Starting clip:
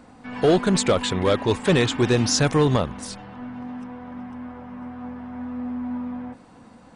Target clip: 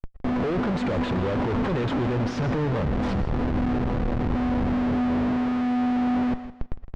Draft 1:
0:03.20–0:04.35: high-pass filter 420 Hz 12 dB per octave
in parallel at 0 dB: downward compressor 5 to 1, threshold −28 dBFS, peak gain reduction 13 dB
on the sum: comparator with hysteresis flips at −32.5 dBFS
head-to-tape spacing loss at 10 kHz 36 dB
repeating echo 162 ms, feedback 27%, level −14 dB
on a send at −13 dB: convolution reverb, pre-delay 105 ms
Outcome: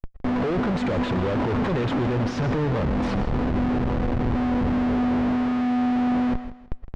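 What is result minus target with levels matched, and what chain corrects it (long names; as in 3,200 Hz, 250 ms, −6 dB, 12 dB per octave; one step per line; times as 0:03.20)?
downward compressor: peak gain reduction −7 dB
0:03.20–0:04.35: high-pass filter 420 Hz 12 dB per octave
in parallel at 0 dB: downward compressor 5 to 1, threshold −37 dBFS, peak gain reduction 20.5 dB
on the sum: comparator with hysteresis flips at −32.5 dBFS
head-to-tape spacing loss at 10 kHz 36 dB
repeating echo 162 ms, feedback 27%, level −14 dB
on a send at −13 dB: convolution reverb, pre-delay 105 ms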